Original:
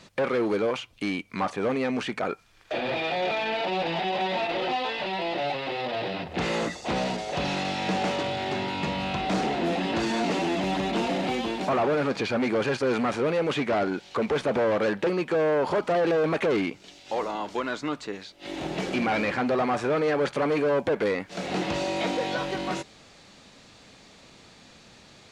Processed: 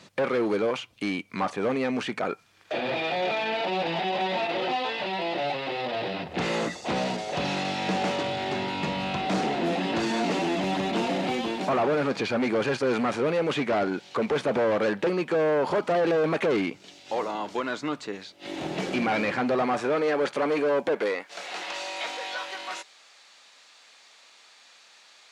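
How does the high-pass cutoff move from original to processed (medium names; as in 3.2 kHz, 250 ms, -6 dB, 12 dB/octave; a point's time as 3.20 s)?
19.56 s 97 Hz
20.00 s 230 Hz
20.90 s 230 Hz
21.45 s 950 Hz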